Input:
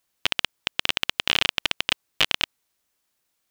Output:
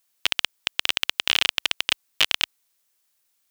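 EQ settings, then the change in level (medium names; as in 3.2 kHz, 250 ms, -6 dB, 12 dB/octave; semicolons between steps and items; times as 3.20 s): tilt EQ +2 dB/octave; -2.0 dB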